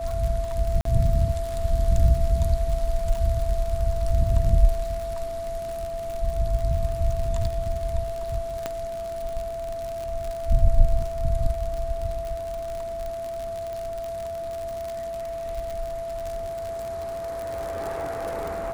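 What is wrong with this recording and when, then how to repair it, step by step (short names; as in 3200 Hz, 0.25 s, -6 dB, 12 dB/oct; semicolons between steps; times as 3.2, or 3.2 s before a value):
crackle 57/s -28 dBFS
tone 670 Hz -29 dBFS
0.81–0.85 gap 43 ms
8.66 pop -13 dBFS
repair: de-click; notch 670 Hz, Q 30; interpolate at 0.81, 43 ms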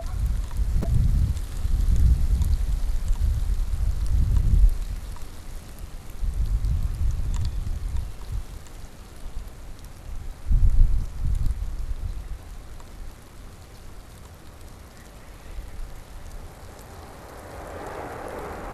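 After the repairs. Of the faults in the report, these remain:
8.66 pop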